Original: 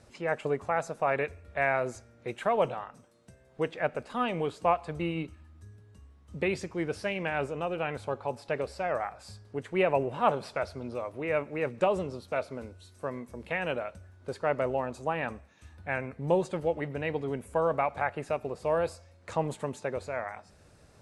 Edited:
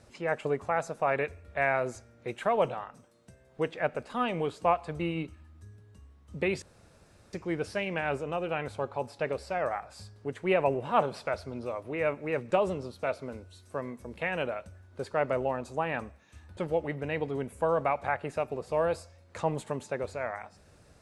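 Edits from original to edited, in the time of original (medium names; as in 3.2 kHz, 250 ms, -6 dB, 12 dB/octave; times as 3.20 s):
6.62 s: insert room tone 0.71 s
15.86–16.50 s: delete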